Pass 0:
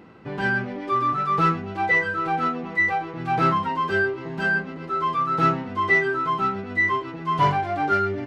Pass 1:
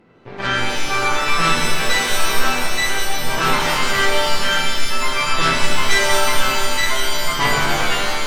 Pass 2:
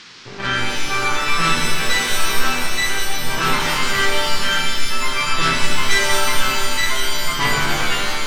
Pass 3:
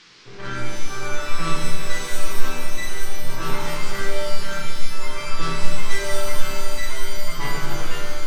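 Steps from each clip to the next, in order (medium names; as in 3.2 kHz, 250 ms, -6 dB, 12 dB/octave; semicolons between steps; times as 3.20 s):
fade out at the end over 0.51 s; Chebyshev shaper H 3 -16 dB, 4 -11 dB, 8 -18 dB, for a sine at -7.5 dBFS; pitch-shifted reverb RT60 1.8 s, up +7 st, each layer -2 dB, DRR -1 dB; trim -1 dB
peaking EQ 650 Hz -5 dB 1.1 oct; band noise 1–5.5 kHz -42 dBFS
simulated room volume 36 m³, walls mixed, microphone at 0.48 m; dynamic bell 2.8 kHz, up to -5 dB, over -32 dBFS, Q 0.73; trim -9.5 dB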